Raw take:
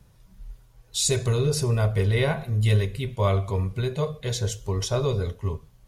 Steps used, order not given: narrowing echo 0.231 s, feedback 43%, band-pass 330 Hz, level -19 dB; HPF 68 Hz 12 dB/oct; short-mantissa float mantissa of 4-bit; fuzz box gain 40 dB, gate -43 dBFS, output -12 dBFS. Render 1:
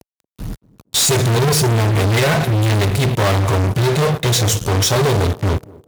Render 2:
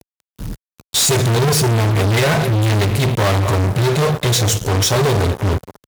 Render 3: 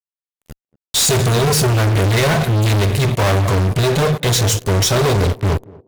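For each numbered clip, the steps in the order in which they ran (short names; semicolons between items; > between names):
fuzz box > narrowing echo > short-mantissa float > HPF; short-mantissa float > narrowing echo > fuzz box > HPF; HPF > fuzz box > short-mantissa float > narrowing echo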